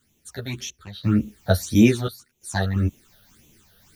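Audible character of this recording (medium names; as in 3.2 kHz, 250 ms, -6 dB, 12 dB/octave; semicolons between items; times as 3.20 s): a quantiser's noise floor 10-bit, dither triangular; phasing stages 8, 1.8 Hz, lowest notch 290–1500 Hz; random-step tremolo 2.9 Hz, depth 90%; a shimmering, thickened sound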